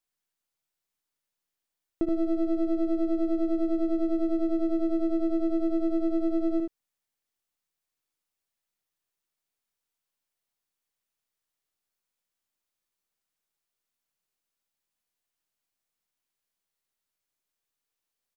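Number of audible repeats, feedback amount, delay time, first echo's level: 1, repeats not evenly spaced, 76 ms, −6.0 dB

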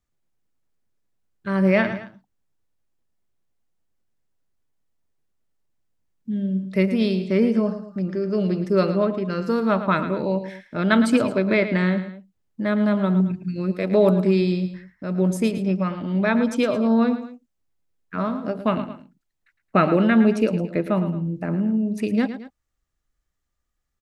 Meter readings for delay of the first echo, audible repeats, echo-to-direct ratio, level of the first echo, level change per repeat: 110 ms, 2, −10.5 dB, −11.5 dB, −7.0 dB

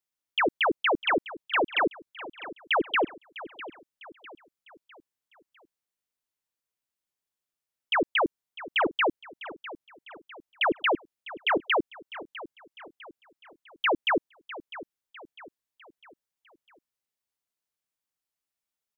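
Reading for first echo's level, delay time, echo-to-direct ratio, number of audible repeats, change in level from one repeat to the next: −16.0 dB, 652 ms, −15.0 dB, 3, −7.0 dB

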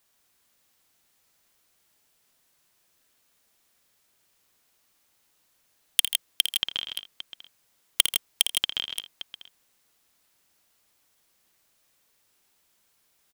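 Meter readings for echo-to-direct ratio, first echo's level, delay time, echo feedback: −3.0 dB, −8.0 dB, 55 ms, repeats not evenly spaced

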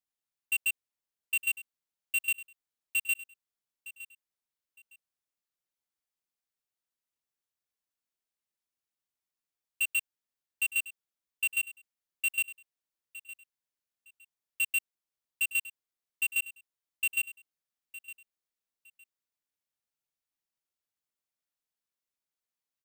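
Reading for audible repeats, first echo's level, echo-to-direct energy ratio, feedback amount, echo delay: 2, −16.0 dB, −16.0 dB, 22%, 911 ms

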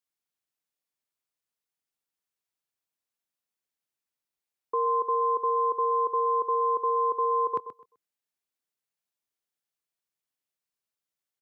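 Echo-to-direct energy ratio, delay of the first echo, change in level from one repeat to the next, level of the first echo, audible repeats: −12.0 dB, 128 ms, −13.5 dB, −12.0 dB, 2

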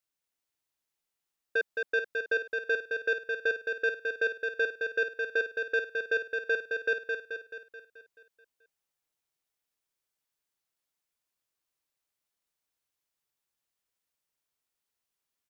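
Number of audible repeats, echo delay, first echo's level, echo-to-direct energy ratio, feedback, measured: 7, 216 ms, −4.5 dB, −3.0 dB, 56%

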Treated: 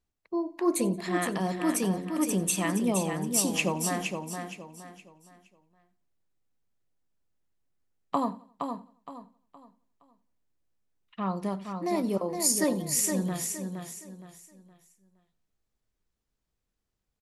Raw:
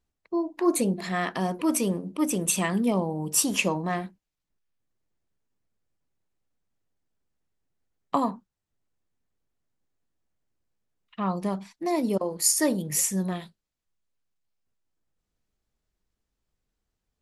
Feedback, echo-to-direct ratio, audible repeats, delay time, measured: repeats not evenly spaced, −5.5 dB, 7, 88 ms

